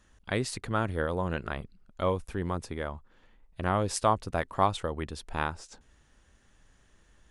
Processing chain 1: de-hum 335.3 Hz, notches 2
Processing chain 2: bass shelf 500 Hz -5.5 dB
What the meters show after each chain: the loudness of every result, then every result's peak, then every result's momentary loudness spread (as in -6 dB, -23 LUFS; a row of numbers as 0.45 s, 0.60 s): -31.5 LUFS, -33.5 LUFS; -10.0 dBFS, -11.0 dBFS; 12 LU, 12 LU